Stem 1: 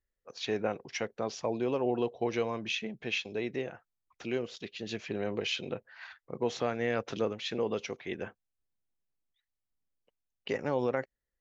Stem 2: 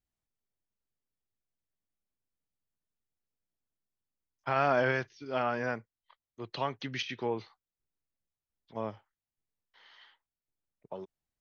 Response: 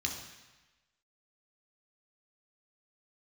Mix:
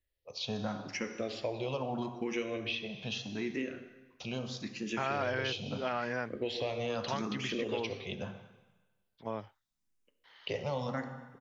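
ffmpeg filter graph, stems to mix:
-filter_complex "[0:a]asplit=2[a][b];[b]afreqshift=0.78[c];[a][c]amix=inputs=2:normalize=1,volume=1.5dB,asplit=2[d][e];[e]volume=-5.5dB[f];[1:a]deesser=0.85,adelay=500,volume=0dB[g];[2:a]atrim=start_sample=2205[h];[f][h]afir=irnorm=-1:irlink=0[i];[d][g][i]amix=inputs=3:normalize=0,acrossover=split=1500|5400[j][k][l];[j]acompressor=threshold=-32dB:ratio=4[m];[k]acompressor=threshold=-39dB:ratio=4[n];[l]acompressor=threshold=-52dB:ratio=4[o];[m][n][o]amix=inputs=3:normalize=0"

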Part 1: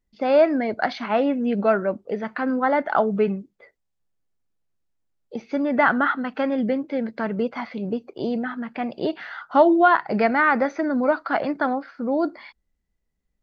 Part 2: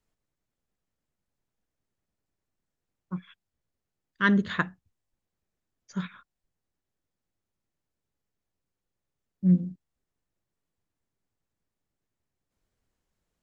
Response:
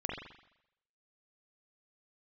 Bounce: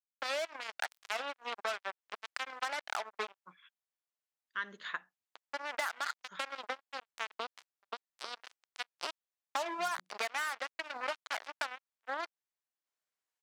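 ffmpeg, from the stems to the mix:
-filter_complex "[0:a]highshelf=f=3.6k:g=11,acrusher=bits=2:mix=0:aa=0.5,volume=-5dB[a];[1:a]adelay=350,volume=-7dB[b];[a][b]amix=inputs=2:normalize=0,highpass=820,acompressor=threshold=-33dB:ratio=6"

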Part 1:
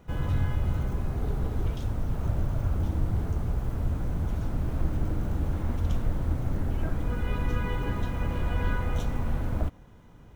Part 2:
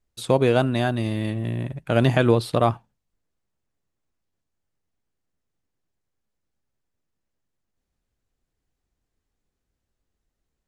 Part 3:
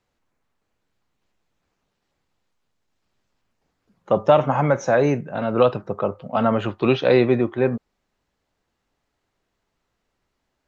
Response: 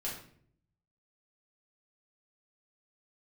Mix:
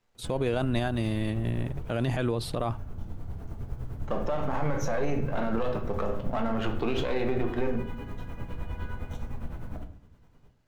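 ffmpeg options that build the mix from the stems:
-filter_complex "[0:a]tremolo=f=9.8:d=0.74,adelay=150,volume=-9.5dB,asplit=2[a][b];[b]volume=-4dB[c];[1:a]agate=range=-33dB:threshold=-31dB:ratio=3:detection=peak,volume=-3dB,asplit=2[d][e];[2:a]aeval=exprs='if(lt(val(0),0),0.447*val(0),val(0))':c=same,acompressor=threshold=-22dB:ratio=4,volume=-2.5dB,asplit=2[f][g];[g]volume=-3dB[h];[e]apad=whole_len=463383[i];[a][i]sidechaincompress=threshold=-24dB:ratio=8:attack=7.2:release=1180[j];[3:a]atrim=start_sample=2205[k];[c][h]amix=inputs=2:normalize=0[l];[l][k]afir=irnorm=-1:irlink=0[m];[j][d][f][m]amix=inputs=4:normalize=0,alimiter=limit=-18dB:level=0:latency=1:release=47"

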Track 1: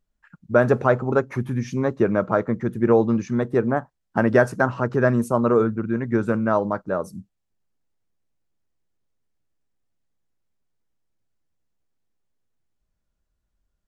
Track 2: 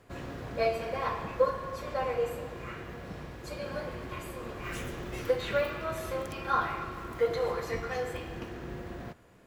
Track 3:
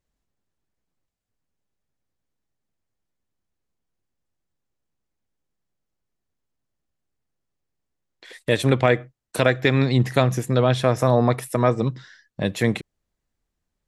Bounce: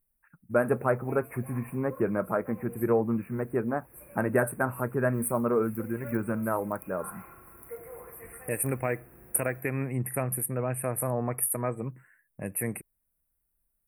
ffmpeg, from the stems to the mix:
-filter_complex "[0:a]flanger=delay=0.8:depth=7.9:regen=-73:speed=0.32:shape=triangular,highshelf=f=7.6k:g=11,adynamicsmooth=sensitivity=4:basefreq=5.4k,volume=-3.5dB,asplit=2[a][b];[1:a]adelay=500,volume=-14.5dB[c];[2:a]volume=-12dB[d];[b]apad=whole_len=439473[e];[c][e]sidechaincompress=threshold=-30dB:ratio=8:attack=16:release=266[f];[a][f][d]amix=inputs=3:normalize=0,aexciter=amount=14.4:drive=7.2:freq=8.6k,asuperstop=centerf=4800:order=20:qfactor=0.87"

